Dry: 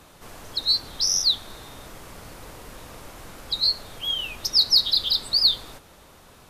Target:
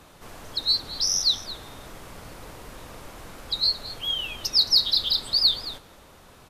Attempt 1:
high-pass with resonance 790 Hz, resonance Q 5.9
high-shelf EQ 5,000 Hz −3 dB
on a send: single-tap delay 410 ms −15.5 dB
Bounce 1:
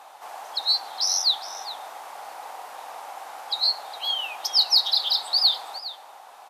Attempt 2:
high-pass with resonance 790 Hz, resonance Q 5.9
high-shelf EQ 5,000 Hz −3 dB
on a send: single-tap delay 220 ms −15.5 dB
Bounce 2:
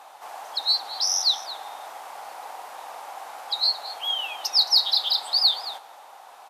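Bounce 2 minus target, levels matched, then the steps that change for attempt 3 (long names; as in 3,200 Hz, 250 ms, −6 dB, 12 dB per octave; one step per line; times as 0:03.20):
1,000 Hz band +10.5 dB
remove: high-pass with resonance 790 Hz, resonance Q 5.9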